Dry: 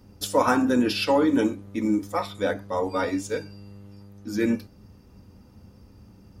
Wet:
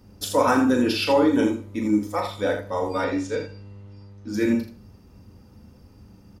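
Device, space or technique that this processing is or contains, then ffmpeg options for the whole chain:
slapback doubling: -filter_complex "[0:a]asplit=3[link_01][link_02][link_03];[link_02]adelay=38,volume=-6.5dB[link_04];[link_03]adelay=81,volume=-8dB[link_05];[link_01][link_04][link_05]amix=inputs=3:normalize=0,asettb=1/sr,asplit=3[link_06][link_07][link_08];[link_06]atrim=end=3.044[link_09];[link_07]atrim=start=3.04:end=4.34,asetpts=PTS-STARTPTS,afade=type=in:duration=0.004:curve=qsin,afade=type=out:start_time=1.296:duration=0.004:curve=qsin,lowpass=5500[link_10];[link_08]atrim=start=4.336[link_11];[link_09][link_10]acrossfade=duration=0.004:curve1=hsin:curve2=qsin[link_12];[link_12][link_11]acrossfade=duration=0.004:curve1=qsin:curve2=hsin,asplit=2[link_13][link_14];[link_14]adelay=151.6,volume=-23dB,highshelf=frequency=4000:gain=-3.41[link_15];[link_13][link_15]amix=inputs=2:normalize=0"

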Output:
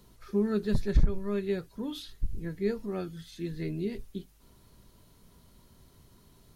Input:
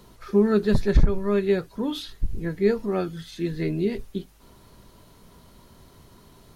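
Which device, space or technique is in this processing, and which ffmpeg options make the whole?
smiley-face EQ: -af "lowshelf=frequency=190:gain=3.5,equalizer=frequency=830:width_type=o:width=2.1:gain=-3,highshelf=frequency=6000:gain=4.5,volume=-8.5dB"

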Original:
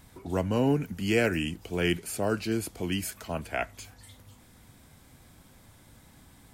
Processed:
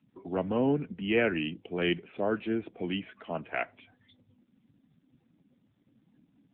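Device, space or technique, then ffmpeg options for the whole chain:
mobile call with aggressive noise cancelling: -af "highpass=180,afftdn=noise_reduction=20:noise_floor=-50" -ar 8000 -c:a libopencore_amrnb -b:a 7950

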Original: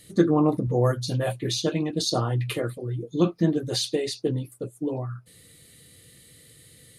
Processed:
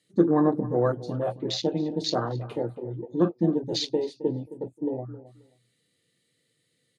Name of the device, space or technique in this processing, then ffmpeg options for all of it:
over-cleaned archive recording: -filter_complex "[0:a]highpass=77,highpass=170,lowpass=7800,afwtdn=0.0251,highshelf=frequency=10000:gain=-5,asplit=2[link_01][link_02];[link_02]adelay=266,lowpass=frequency=1900:poles=1,volume=-15.5dB,asplit=2[link_03][link_04];[link_04]adelay=266,lowpass=frequency=1900:poles=1,volume=0.19[link_05];[link_01][link_03][link_05]amix=inputs=3:normalize=0"

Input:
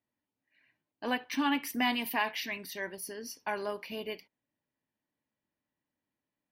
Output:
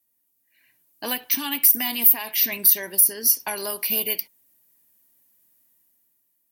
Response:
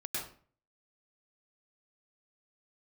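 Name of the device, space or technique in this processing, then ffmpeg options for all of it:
FM broadcast chain: -filter_complex "[0:a]highpass=42,dynaudnorm=framelen=120:gausssize=13:maxgain=9dB,acrossover=split=1100|2600[link_01][link_02][link_03];[link_01]acompressor=threshold=-30dB:ratio=4[link_04];[link_02]acompressor=threshold=-40dB:ratio=4[link_05];[link_03]acompressor=threshold=-35dB:ratio=4[link_06];[link_04][link_05][link_06]amix=inputs=3:normalize=0,aemphasis=mode=production:type=50fm,alimiter=limit=-16dB:level=0:latency=1:release=346,asoftclip=type=hard:threshold=-17.5dB,lowpass=frequency=15000:width=0.5412,lowpass=frequency=15000:width=1.3066,aemphasis=mode=production:type=50fm"

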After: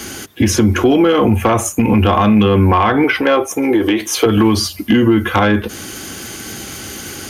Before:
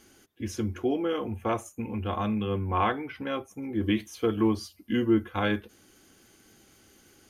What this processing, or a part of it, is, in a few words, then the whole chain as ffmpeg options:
mastering chain: -filter_complex "[0:a]highpass=54,equalizer=frequency=410:width_type=o:width=2:gain=-3.5,acrossover=split=190|1600[link_01][link_02][link_03];[link_01]acompressor=threshold=-41dB:ratio=4[link_04];[link_02]acompressor=threshold=-31dB:ratio=4[link_05];[link_03]acompressor=threshold=-46dB:ratio=4[link_06];[link_04][link_05][link_06]amix=inputs=3:normalize=0,acompressor=threshold=-36dB:ratio=3,asoftclip=type=tanh:threshold=-28.5dB,asoftclip=type=hard:threshold=-31dB,alimiter=level_in=34dB:limit=-1dB:release=50:level=0:latency=1,asettb=1/sr,asplit=3[link_07][link_08][link_09];[link_07]atrim=end=3.044[link_10];[link_08]atrim=start=3.04:end=4.26,asetpts=PTS-STARTPTS,afade=type=in:duration=0.004:curve=qsin,afade=type=out:start_time=1.216:duration=0.004:curve=qsin,lowshelf=frequency=260:width_type=q:width=1.5:gain=-12[link_11];[link_09]atrim=start=4.256[link_12];[link_10][link_11]acrossfade=duration=0.004:curve1=hsin:curve2=qsin[link_13];[link_13][link_12]acrossfade=duration=0.004:curve1=qsin:curve2=hsin,volume=-3.5dB"

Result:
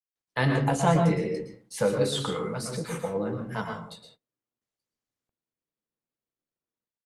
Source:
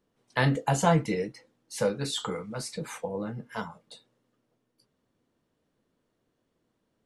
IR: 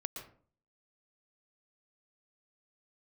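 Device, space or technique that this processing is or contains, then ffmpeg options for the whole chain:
speakerphone in a meeting room: -filter_complex "[1:a]atrim=start_sample=2205[link_01];[0:a][link_01]afir=irnorm=-1:irlink=0,dynaudnorm=framelen=130:gausssize=5:maxgain=11dB,agate=range=-26dB:threshold=-49dB:ratio=16:detection=peak,volume=-6.5dB" -ar 48000 -c:a libopus -b:a 32k

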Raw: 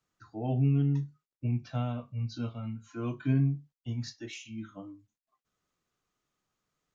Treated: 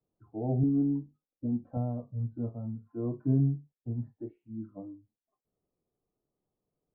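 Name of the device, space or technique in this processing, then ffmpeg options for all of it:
under water: -filter_complex "[0:a]asettb=1/sr,asplit=3[link_01][link_02][link_03];[link_01]atrim=end=0.634[link_04];[link_02]atrim=start=0.63:end=1.77,asetpts=PTS-STARTPTS,afade=type=in:duration=0.004:curve=qsin,afade=type=out:start_time=1.136:duration=0.004:curve=qsin,aecho=1:1:3.8:0.73,atrim=end_sample=50274[link_05];[link_03]atrim=start=1.766[link_06];[link_04][link_05]acrossfade=duration=0.004:curve1=hsin:curve2=qsin[link_07];[link_07][link_06]acrossfade=duration=0.004:curve1=qsin:curve2=hsin,lowpass=frequency=780:width=0.5412,lowpass=frequency=780:width=1.3066,equalizer=frequency=410:width_type=o:width=0.77:gain=4"

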